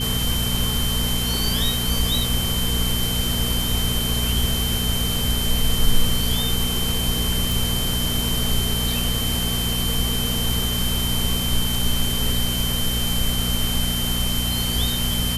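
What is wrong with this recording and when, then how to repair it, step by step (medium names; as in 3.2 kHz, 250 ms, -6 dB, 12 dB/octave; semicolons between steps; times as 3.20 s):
hum 60 Hz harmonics 4 -26 dBFS
whine 3.1 kHz -26 dBFS
7.52 s: pop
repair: de-click; band-stop 3.1 kHz, Q 30; de-hum 60 Hz, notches 4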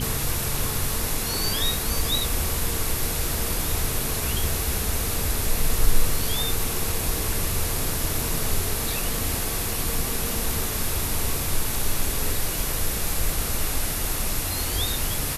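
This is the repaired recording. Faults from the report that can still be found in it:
nothing left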